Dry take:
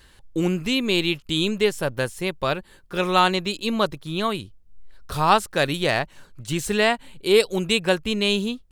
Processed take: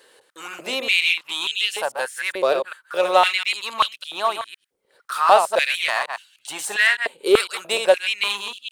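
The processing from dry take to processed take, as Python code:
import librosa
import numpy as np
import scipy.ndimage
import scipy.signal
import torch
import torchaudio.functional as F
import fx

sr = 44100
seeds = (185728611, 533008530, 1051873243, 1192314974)

p1 = fx.reverse_delay(x, sr, ms=101, wet_db=-6.5)
p2 = 10.0 ** (-19.5 / 20.0) * (np.abs((p1 / 10.0 ** (-19.5 / 20.0) + 3.0) % 4.0 - 2.0) - 1.0)
p3 = p1 + F.gain(torch.from_numpy(p2), -11.0).numpy()
p4 = fx.peak_eq(p3, sr, hz=9000.0, db=6.5, octaves=0.22)
p5 = fx.filter_held_highpass(p4, sr, hz=3.4, low_hz=470.0, high_hz=2900.0)
y = F.gain(torch.from_numpy(p5), -2.5).numpy()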